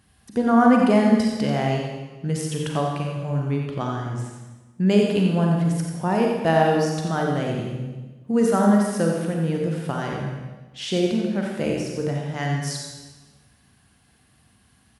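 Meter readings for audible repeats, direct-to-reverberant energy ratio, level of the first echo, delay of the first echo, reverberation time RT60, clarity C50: 1, −0.5 dB, −7.0 dB, 89 ms, 1.3 s, 0.5 dB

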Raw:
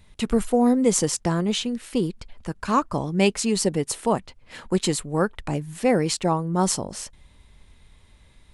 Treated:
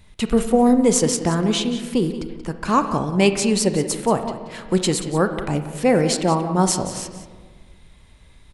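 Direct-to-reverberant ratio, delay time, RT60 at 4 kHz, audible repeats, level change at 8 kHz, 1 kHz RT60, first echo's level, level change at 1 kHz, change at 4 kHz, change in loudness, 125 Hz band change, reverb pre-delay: 7.5 dB, 181 ms, 1.0 s, 1, +3.0 dB, 1.5 s, −13.0 dB, +4.0 dB, +3.5 dB, +3.5 dB, +3.5 dB, 29 ms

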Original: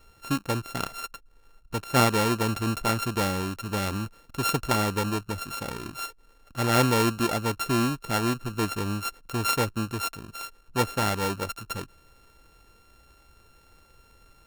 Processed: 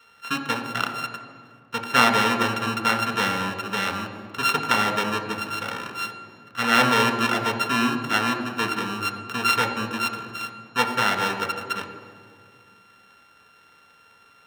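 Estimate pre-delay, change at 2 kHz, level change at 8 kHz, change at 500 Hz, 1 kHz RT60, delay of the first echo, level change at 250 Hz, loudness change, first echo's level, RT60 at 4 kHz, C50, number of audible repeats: 3 ms, +9.0 dB, −1.5 dB, 0.0 dB, 2.0 s, no echo audible, 0.0 dB, +4.0 dB, no echo audible, 1.4 s, 8.0 dB, no echo audible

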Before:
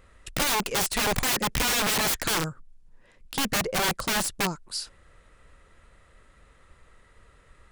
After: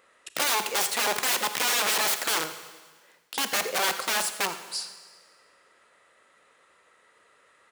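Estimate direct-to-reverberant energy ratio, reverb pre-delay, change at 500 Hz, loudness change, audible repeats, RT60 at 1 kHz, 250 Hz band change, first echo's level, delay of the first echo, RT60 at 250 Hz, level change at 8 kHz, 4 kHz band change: 9.5 dB, 29 ms, −1.5 dB, 0.0 dB, 1, 1.5 s, −9.5 dB, −15.0 dB, 85 ms, 1.5 s, +0.5 dB, +0.5 dB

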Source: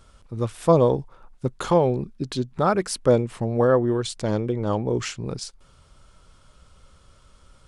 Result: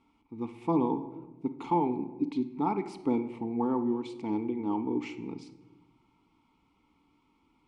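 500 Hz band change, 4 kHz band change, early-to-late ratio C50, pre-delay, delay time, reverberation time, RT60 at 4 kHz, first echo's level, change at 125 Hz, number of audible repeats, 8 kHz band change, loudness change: −14.0 dB, −18.0 dB, 12.5 dB, 4 ms, no echo audible, 1.2 s, 0.65 s, no echo audible, −16.0 dB, no echo audible, below −25 dB, −8.5 dB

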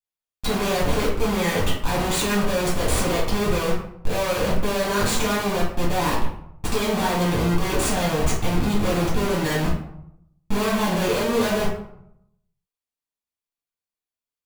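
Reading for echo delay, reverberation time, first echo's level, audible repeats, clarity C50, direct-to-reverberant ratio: no echo audible, 0.75 s, no echo audible, no echo audible, 4.0 dB, −7.0 dB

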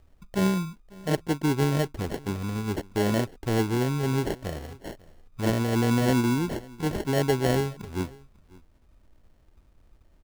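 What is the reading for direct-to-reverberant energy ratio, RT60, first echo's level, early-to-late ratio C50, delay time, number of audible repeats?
no reverb audible, no reverb audible, −23.0 dB, no reverb audible, 546 ms, 1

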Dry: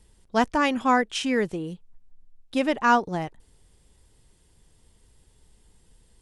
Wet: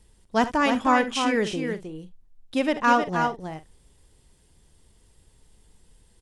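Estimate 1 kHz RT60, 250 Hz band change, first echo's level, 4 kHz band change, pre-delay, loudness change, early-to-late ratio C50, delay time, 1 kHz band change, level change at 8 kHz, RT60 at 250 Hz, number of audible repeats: no reverb audible, +1.0 dB, −15.0 dB, +1.0 dB, no reverb audible, +0.5 dB, no reverb audible, 59 ms, +1.0 dB, +1.0 dB, no reverb audible, 3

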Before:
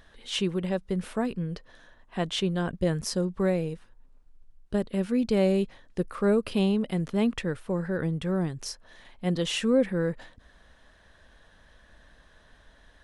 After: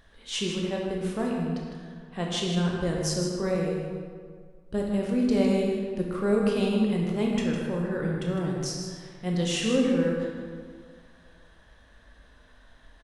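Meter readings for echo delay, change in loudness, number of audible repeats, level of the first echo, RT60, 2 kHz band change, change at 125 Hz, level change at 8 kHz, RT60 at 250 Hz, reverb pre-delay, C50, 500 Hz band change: 156 ms, +0.5 dB, 1, −7.5 dB, 1.9 s, +0.5 dB, +0.5 dB, +4.0 dB, 2.0 s, 17 ms, 0.0 dB, +0.5 dB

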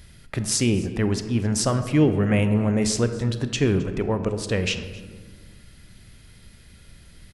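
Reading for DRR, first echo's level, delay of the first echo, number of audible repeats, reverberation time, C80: 8.5 dB, −21.5 dB, 265 ms, 1, 1.6 s, 11.0 dB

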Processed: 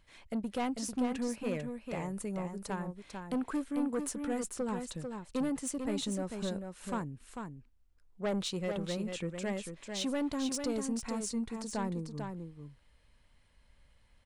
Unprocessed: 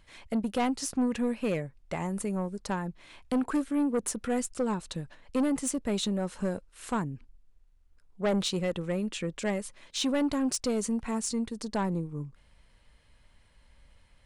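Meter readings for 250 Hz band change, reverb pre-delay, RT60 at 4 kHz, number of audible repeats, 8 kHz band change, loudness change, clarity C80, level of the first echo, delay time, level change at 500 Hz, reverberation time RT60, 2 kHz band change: −5.0 dB, no reverb audible, no reverb audible, 1, −5.0 dB, −5.0 dB, no reverb audible, −6.0 dB, 445 ms, −5.0 dB, no reverb audible, −5.0 dB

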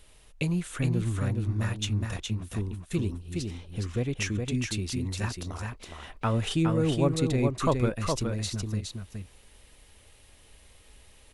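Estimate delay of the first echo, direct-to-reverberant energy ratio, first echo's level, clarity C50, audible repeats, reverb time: 415 ms, no reverb audible, −4.5 dB, no reverb audible, 1, no reverb audible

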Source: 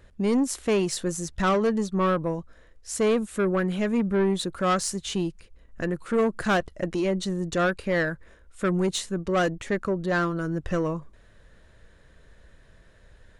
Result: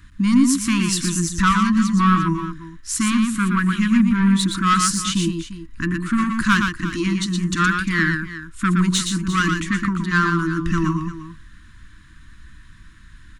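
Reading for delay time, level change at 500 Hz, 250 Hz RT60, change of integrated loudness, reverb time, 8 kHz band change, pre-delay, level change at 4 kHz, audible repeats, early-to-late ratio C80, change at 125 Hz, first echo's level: 118 ms, −10.0 dB, no reverb audible, +7.0 dB, no reverb audible, +9.5 dB, no reverb audible, +9.0 dB, 2, no reverb audible, +9.0 dB, −5.0 dB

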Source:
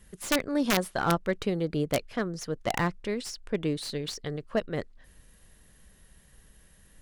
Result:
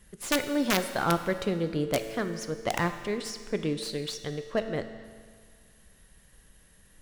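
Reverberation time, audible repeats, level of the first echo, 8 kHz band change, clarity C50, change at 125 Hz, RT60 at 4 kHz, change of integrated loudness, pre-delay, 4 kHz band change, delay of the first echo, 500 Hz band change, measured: 1.8 s, no echo audible, no echo audible, +0.5 dB, 9.5 dB, −1.0 dB, 1.8 s, 0.0 dB, 9 ms, +0.5 dB, no echo audible, +0.5 dB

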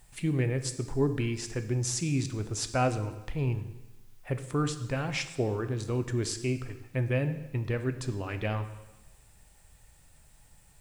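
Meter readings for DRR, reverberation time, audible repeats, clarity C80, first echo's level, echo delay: 8.5 dB, 1.1 s, no echo audible, 13.5 dB, no echo audible, no echo audible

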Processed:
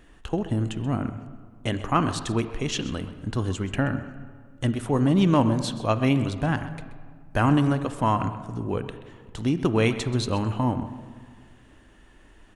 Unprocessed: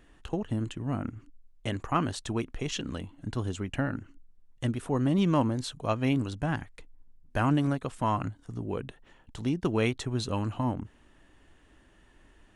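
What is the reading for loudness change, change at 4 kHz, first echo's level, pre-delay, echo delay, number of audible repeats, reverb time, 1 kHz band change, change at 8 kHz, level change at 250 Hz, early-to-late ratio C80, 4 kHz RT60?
+5.5 dB, +5.5 dB, −15.0 dB, 29 ms, 130 ms, 1, 1.9 s, +5.5 dB, +5.0 dB, +5.5 dB, 11.5 dB, 1.2 s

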